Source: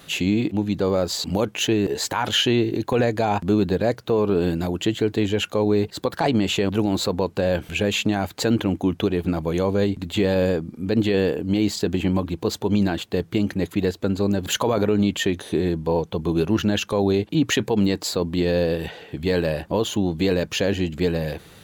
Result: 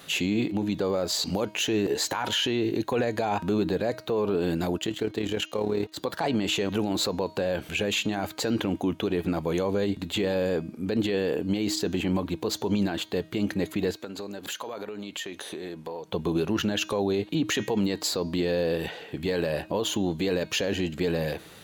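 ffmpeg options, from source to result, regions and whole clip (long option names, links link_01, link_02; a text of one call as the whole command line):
ffmpeg -i in.wav -filter_complex "[0:a]asettb=1/sr,asplit=3[link_01][link_02][link_03];[link_01]atrim=end=4.784[link_04];[link_02]atrim=start=4.78:end=5.98,asetpts=PTS-STARTPTS,afade=type=in:duration=0.004:curve=qsin,afade=type=out:start_time=1.196:duration=0.004:curve=qsin,aeval=exprs='sgn(val(0))*max(abs(val(0))-0.00531,0)':channel_layout=same,tremolo=f=37:d=0.621[link_05];[link_03]atrim=start=5.976[link_06];[link_04][link_05]acrossfade=duration=0.004:curve1=hsin:curve2=qsin[link_07];[link_07][link_06]acrossfade=duration=0.004:curve1=qsin:curve2=hsin,asettb=1/sr,asplit=3[link_08][link_09][link_10];[link_08]atrim=end=13.964[link_11];[link_09]atrim=start=13.96:end=16.08,asetpts=PTS-STARTPTS,afade=type=in:duration=0.004:curve=qsin,afade=type=out:start_time=2.116:duration=0.004:curve=qsin,highpass=frequency=470:poles=1,acompressor=threshold=-30dB:ratio=12:attack=3.2:release=140:knee=1:detection=peak[link_12];[link_10]atrim=start=16.076[link_13];[link_11][link_12]acrossfade=duration=0.004:curve1=hsin:curve2=qsin[link_14];[link_14][link_13]acrossfade=duration=0.004:curve1=qsin:curve2=hsin,lowshelf=frequency=130:gain=-10.5,bandreject=frequency=315:width_type=h:width=4,bandreject=frequency=630:width_type=h:width=4,bandreject=frequency=945:width_type=h:width=4,bandreject=frequency=1260:width_type=h:width=4,bandreject=frequency=1575:width_type=h:width=4,bandreject=frequency=1890:width_type=h:width=4,bandreject=frequency=2205:width_type=h:width=4,bandreject=frequency=2520:width_type=h:width=4,bandreject=frequency=2835:width_type=h:width=4,bandreject=frequency=3150:width_type=h:width=4,bandreject=frequency=3465:width_type=h:width=4,bandreject=frequency=3780:width_type=h:width=4,bandreject=frequency=4095:width_type=h:width=4,bandreject=frequency=4410:width_type=h:width=4,bandreject=frequency=4725:width_type=h:width=4,bandreject=frequency=5040:width_type=h:width=4,bandreject=frequency=5355:width_type=h:width=4,bandreject=frequency=5670:width_type=h:width=4,bandreject=frequency=5985:width_type=h:width=4,bandreject=frequency=6300:width_type=h:width=4,bandreject=frequency=6615:width_type=h:width=4,bandreject=frequency=6930:width_type=h:width=4,alimiter=limit=-17dB:level=0:latency=1:release=40" out.wav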